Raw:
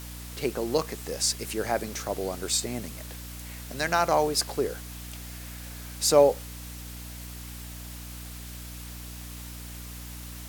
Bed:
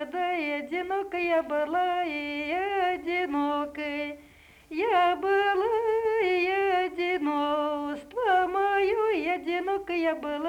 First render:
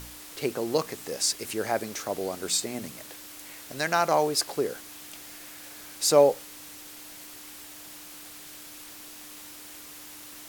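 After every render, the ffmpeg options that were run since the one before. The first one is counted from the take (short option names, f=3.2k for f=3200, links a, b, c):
-af "bandreject=f=60:t=h:w=4,bandreject=f=120:t=h:w=4,bandreject=f=180:t=h:w=4,bandreject=f=240:t=h:w=4"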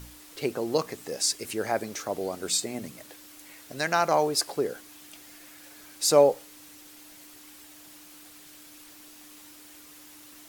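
-af "afftdn=nr=6:nf=-45"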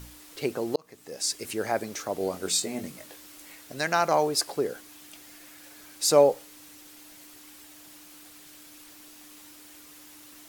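-filter_complex "[0:a]asettb=1/sr,asplit=3[a][b][c];[a]atrim=end=2.184[d];[b]atrim=start=2.18:end=3.56,asetpts=PTS-STARTPTS,afade=t=in:d=0.004:c=qsin,afade=t=out:st=1.376:d=0.004:c=qsin,asplit=2[e][f];[f]adelay=21,volume=-6dB[g];[e][g]amix=inputs=2:normalize=0,atrim=end_sample=60858[h];[c]atrim=start=3.556[i];[d][h]acrossfade=d=0.004:c1=hsin:c2=qsin[j];[j][i]acrossfade=d=0.004:c1=qsin:c2=hsin,asplit=2[k][l];[k]atrim=end=0.76,asetpts=PTS-STARTPTS,afade=t=out:st=0.756:d=0.004:c=hsin[m];[l]atrim=start=0.76,asetpts=PTS-STARTPTS,afade=t=in:d=0.69[n];[m][n]concat=n=2:v=0:a=1"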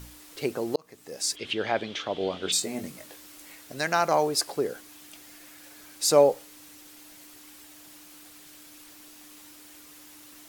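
-filter_complex "[0:a]asplit=3[a][b][c];[a]afade=t=out:st=1.35:d=0.02[d];[b]lowpass=f=3.3k:t=q:w=7.2,afade=t=in:st=1.35:d=0.02,afade=t=out:st=2.51:d=0.02[e];[c]afade=t=in:st=2.51:d=0.02[f];[d][e][f]amix=inputs=3:normalize=0"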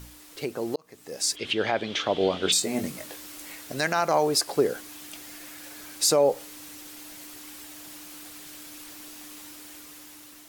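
-af "alimiter=limit=-17.5dB:level=0:latency=1:release=201,dynaudnorm=f=540:g=5:m=6dB"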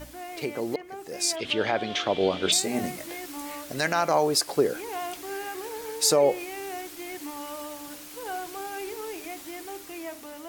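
-filter_complex "[1:a]volume=-11.5dB[a];[0:a][a]amix=inputs=2:normalize=0"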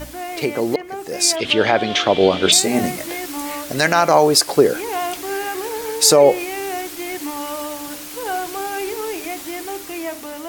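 -af "volume=10dB,alimiter=limit=-2dB:level=0:latency=1"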